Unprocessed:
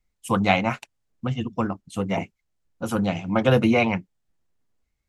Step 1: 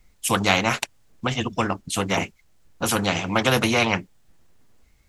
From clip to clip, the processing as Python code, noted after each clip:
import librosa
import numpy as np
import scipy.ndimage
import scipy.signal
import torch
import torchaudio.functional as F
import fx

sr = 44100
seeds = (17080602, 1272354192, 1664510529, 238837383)

y = fx.spectral_comp(x, sr, ratio=2.0)
y = y * librosa.db_to_amplitude(1.5)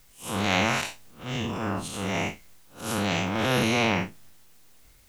y = fx.spec_blur(x, sr, span_ms=125.0)
y = fx.transient(y, sr, attack_db=-9, sustain_db=8)
y = fx.quant_dither(y, sr, seeds[0], bits=10, dither='triangular')
y = y * librosa.db_to_amplitude(-1.0)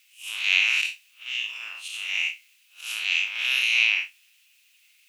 y = fx.highpass_res(x, sr, hz=2600.0, q=6.2)
y = y * librosa.db_to_amplitude(-3.5)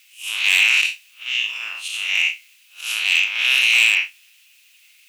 y = np.clip(x, -10.0 ** (-16.0 / 20.0), 10.0 ** (-16.0 / 20.0))
y = y * librosa.db_to_amplitude(7.5)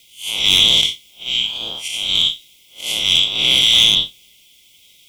y = fx.band_invert(x, sr, width_hz=2000)
y = y * librosa.db_to_amplitude(3.0)